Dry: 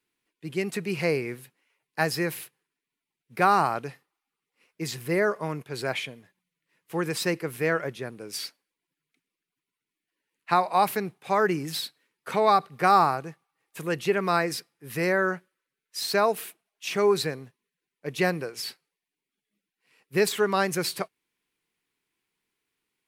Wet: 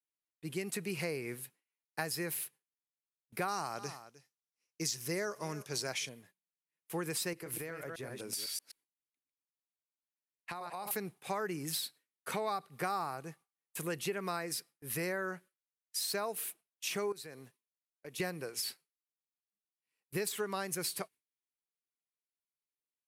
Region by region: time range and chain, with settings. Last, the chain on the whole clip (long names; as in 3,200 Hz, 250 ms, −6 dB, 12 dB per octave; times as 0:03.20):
0:03.48–0:06.09: parametric band 5,800 Hz +15 dB 0.6 octaves + single-tap delay 307 ms −21 dB
0:07.33–0:10.91: delay that plays each chunk backwards 126 ms, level −5 dB + downward compressor 10 to 1, threshold −33 dBFS
0:17.12–0:18.20: low-shelf EQ 120 Hz −10.5 dB + downward compressor 2.5 to 1, threshold −42 dBFS
whole clip: noise gate with hold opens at −45 dBFS; parametric band 11,000 Hz +10.5 dB 1.5 octaves; downward compressor 4 to 1, threshold −29 dBFS; level −5 dB